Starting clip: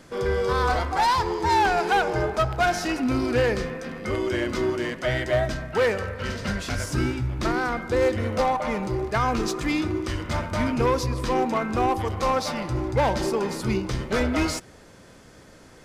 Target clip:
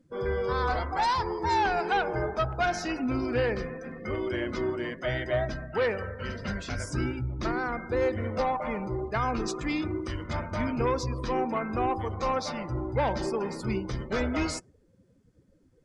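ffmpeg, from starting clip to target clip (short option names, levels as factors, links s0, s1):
-af "afftdn=nr=24:nf=-39,equalizer=f=8700:t=o:w=0.69:g=4,volume=0.562"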